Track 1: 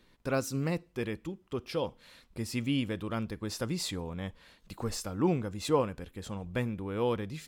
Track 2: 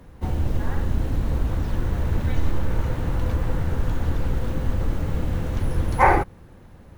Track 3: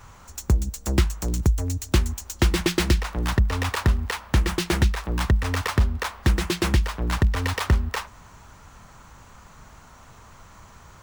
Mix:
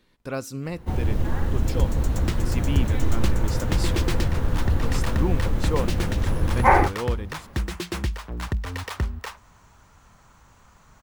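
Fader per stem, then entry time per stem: 0.0 dB, 0.0 dB, -6.5 dB; 0.00 s, 0.65 s, 1.30 s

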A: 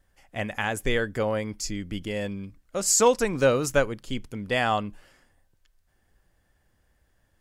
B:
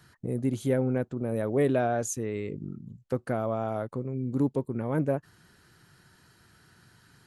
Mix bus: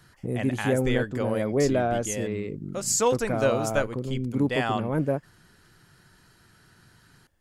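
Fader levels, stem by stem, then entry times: -3.5 dB, +1.5 dB; 0.00 s, 0.00 s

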